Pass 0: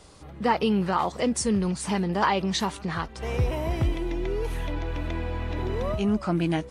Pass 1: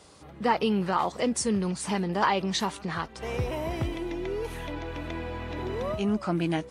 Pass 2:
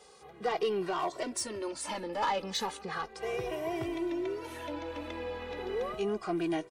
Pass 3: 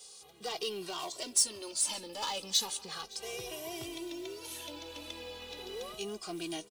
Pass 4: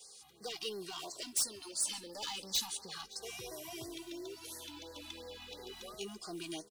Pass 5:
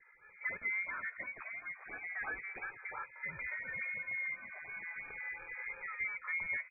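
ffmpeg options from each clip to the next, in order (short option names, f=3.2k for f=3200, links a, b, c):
-af "highpass=f=140:p=1,volume=-1dB"
-filter_complex "[0:a]lowshelf=f=260:t=q:w=1.5:g=-9,asoftclip=type=tanh:threshold=-21dB,asplit=2[a][b];[b]adelay=2,afreqshift=-0.35[c];[a][c]amix=inputs=2:normalize=1"
-af "aecho=1:1:564:0.0631,aexciter=amount=3.2:drive=9.6:freq=2.8k,acrusher=bits=6:mode=log:mix=0:aa=0.000001,volume=-8.5dB"
-filter_complex "[0:a]acrossover=split=620|1400[a][b][c];[b]alimiter=level_in=19dB:limit=-24dB:level=0:latency=1,volume=-19dB[d];[a][d][c]amix=inputs=3:normalize=0,aeval=exprs='0.0794*(abs(mod(val(0)/0.0794+3,4)-2)-1)':c=same,afftfilt=real='re*(1-between(b*sr/1024,430*pow(3000/430,0.5+0.5*sin(2*PI*2.9*pts/sr))/1.41,430*pow(3000/430,0.5+0.5*sin(2*PI*2.9*pts/sr))*1.41))':imag='im*(1-between(b*sr/1024,430*pow(3000/430,0.5+0.5*sin(2*PI*2.9*pts/sr))/1.41,430*pow(3000/430,0.5+0.5*sin(2*PI*2.9*pts/sr))*1.41))':win_size=1024:overlap=0.75,volume=-3dB"
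-af "lowpass=f=2.1k:t=q:w=0.5098,lowpass=f=2.1k:t=q:w=0.6013,lowpass=f=2.1k:t=q:w=0.9,lowpass=f=2.1k:t=q:w=2.563,afreqshift=-2500,volume=6.5dB"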